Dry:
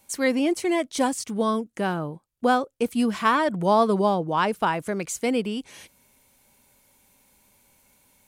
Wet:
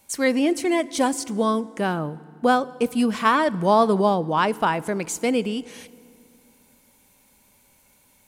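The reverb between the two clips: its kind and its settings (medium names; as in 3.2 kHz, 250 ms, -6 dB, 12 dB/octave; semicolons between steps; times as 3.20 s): FDN reverb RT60 2.3 s, low-frequency decay 1.6×, high-frequency decay 0.75×, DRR 19 dB; trim +2 dB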